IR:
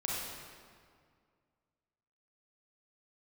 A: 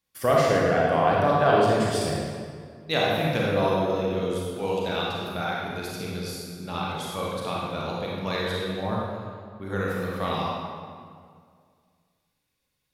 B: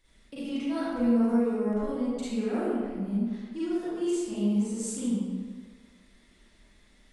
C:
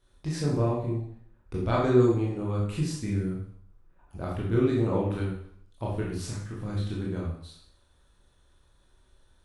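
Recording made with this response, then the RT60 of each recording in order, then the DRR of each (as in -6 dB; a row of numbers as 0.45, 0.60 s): A; 2.1, 1.6, 0.60 s; -5.0, -11.5, -4.5 dB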